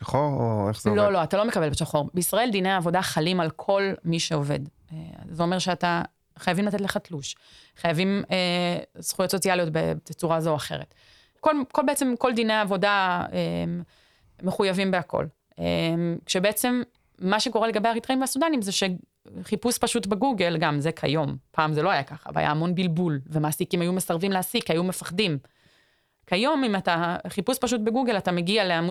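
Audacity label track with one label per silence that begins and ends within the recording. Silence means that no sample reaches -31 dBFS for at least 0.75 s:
25.380000	26.310000	silence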